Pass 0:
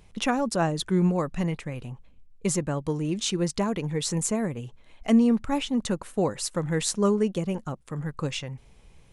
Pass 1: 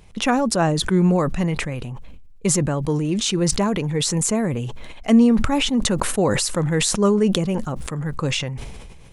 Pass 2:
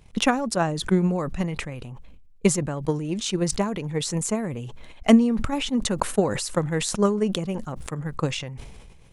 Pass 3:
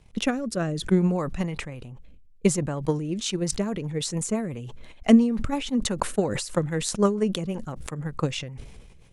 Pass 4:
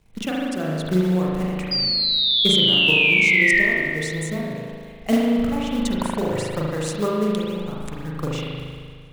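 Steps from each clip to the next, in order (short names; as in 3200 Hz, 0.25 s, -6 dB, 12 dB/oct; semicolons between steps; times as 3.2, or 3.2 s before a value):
sustainer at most 30 dB/s; gain +5 dB
transient shaper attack +11 dB, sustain -2 dB; gain -7 dB
rotary speaker horn 0.6 Hz, later 6 Hz, at 2.75
short-mantissa float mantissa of 2-bit; painted sound fall, 1.71–3.61, 1800–4900 Hz -18 dBFS; spring tank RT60 1.9 s, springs 38 ms, chirp 35 ms, DRR -4.5 dB; gain -4 dB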